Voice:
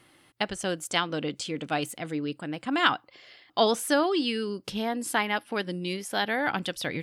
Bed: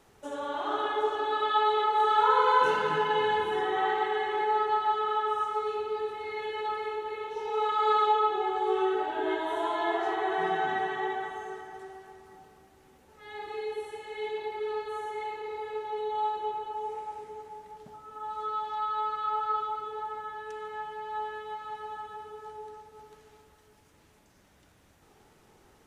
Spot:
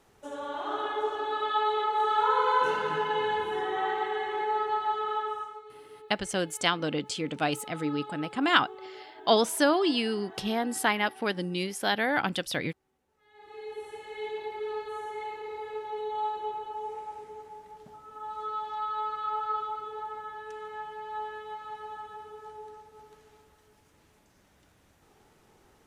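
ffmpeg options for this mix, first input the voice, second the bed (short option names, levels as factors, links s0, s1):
-filter_complex "[0:a]adelay=5700,volume=1.06[s0];[1:a]volume=5.01,afade=t=out:st=5.18:d=0.44:silence=0.16788,afade=t=in:st=13.33:d=0.63:silence=0.158489[s1];[s0][s1]amix=inputs=2:normalize=0"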